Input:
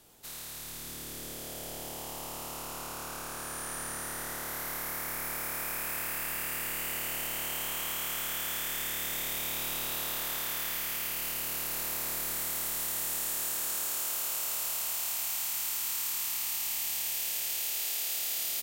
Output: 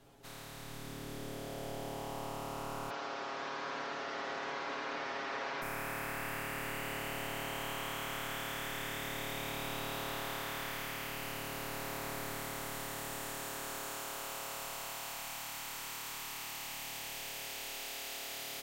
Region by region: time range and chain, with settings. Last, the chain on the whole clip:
2.90–5.62 s: one-bit delta coder 32 kbps, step -37 dBFS + high-pass 320 Hz + loudspeaker Doppler distortion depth 0.74 ms
whole clip: low-pass 1.4 kHz 6 dB/octave; comb 7.3 ms, depth 74%; trim +1.5 dB

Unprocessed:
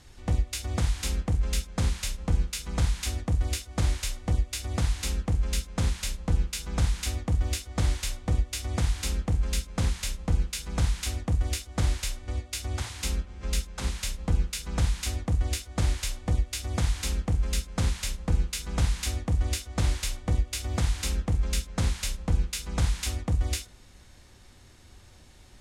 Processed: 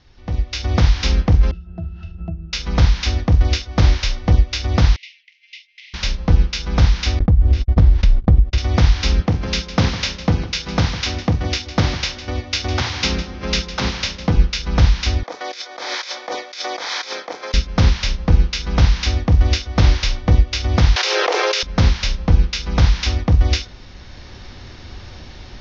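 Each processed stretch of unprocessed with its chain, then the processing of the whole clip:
1.51–2.53 s: peaking EQ 120 Hz +5.5 dB 2.9 oct + compression 12:1, threshold -31 dBFS + pitch-class resonator E, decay 0.12 s
4.96–5.94 s: rippled Chebyshev high-pass 2 kHz, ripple 3 dB + tape spacing loss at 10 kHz 39 dB
7.19–8.58 s: gate -40 dBFS, range -57 dB + tilt EQ -3.5 dB/octave + compression 4:1, threshold -24 dBFS
9.20–14.36 s: high-pass 110 Hz + delay 155 ms -14 dB
15.23–17.54 s: high-pass 460 Hz 24 dB/octave + compressor with a negative ratio -42 dBFS + band-stop 2.8 kHz, Q 6
20.96–21.63 s: steep high-pass 380 Hz 72 dB/octave + level flattener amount 100%
whole clip: level rider gain up to 17 dB; steep low-pass 5.9 kHz 72 dB/octave

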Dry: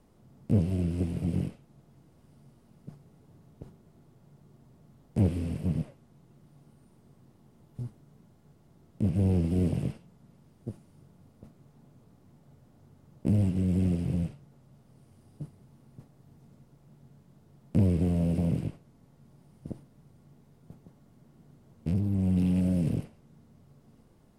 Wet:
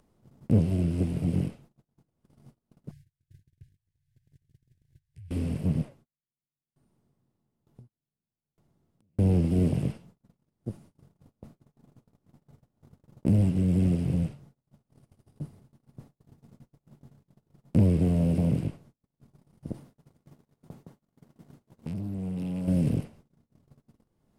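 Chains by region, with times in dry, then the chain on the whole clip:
2.91–5.31 s: compression 16:1, threshold -47 dBFS + brick-wall FIR band-stop 150–1500 Hz + peaking EQ 82 Hz +6 dB 0.91 oct
5.85–9.19 s: compression 10:1, threshold -46 dBFS + sawtooth tremolo in dB decaying 1.1 Hz, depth 33 dB
19.74–22.68 s: bass shelf 100 Hz -9 dB + compression, threshold -34 dBFS + waveshaping leveller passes 1
whole clip: gate -53 dBFS, range -37 dB; upward compressor, threshold -47 dBFS; trim +2.5 dB

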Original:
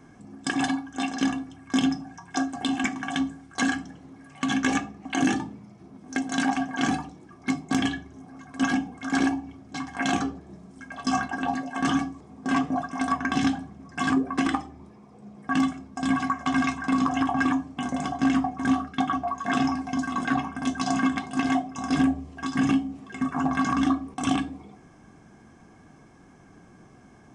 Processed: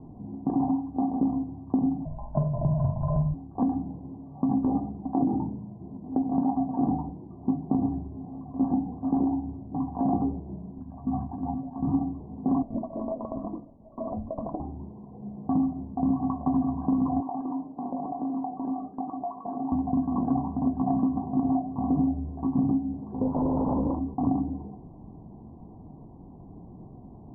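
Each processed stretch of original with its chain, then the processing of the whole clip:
2.05–3.34 s: band-stop 610 Hz, Q 14 + doubling 47 ms -3 dB + frequency shift -120 Hz
10.82–11.94 s: FFT filter 110 Hz 0 dB, 520 Hz -13 dB, 7.3 kHz +6 dB + upward compressor, threshold -38 dBFS
12.62–14.60 s: high-pass 790 Hz + compression 5:1, threshold -30 dBFS + frequency shift -480 Hz
17.20–19.72 s: high-pass 330 Hz + compression 5:1, threshold -31 dBFS
23.01–23.99 s: compression 3:1, threshold -25 dBFS + doubling 39 ms -5 dB + loudspeaker Doppler distortion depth 0.75 ms
whole clip: Chebyshev low-pass 1 kHz, order 6; bass shelf 170 Hz +10.5 dB; compression, threshold -24 dBFS; trim +2.5 dB

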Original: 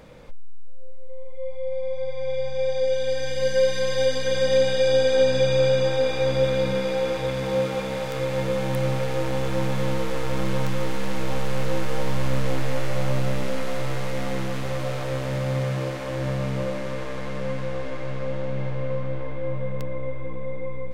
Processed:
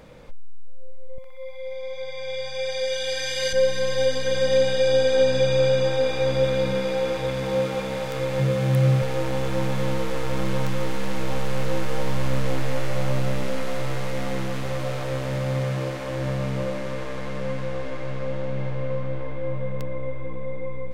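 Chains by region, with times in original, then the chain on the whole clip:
1.18–3.53 s: tilt shelf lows -9 dB, about 820 Hz + upward compressor, threshold -34 dBFS + band-passed feedback delay 62 ms, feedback 74%, band-pass 1.4 kHz, level -9 dB
8.39–9.02 s: high-pass 43 Hz + peaking EQ 140 Hz +11.5 dB 0.36 oct + band-stop 900 Hz, Q 7.7
whole clip: none

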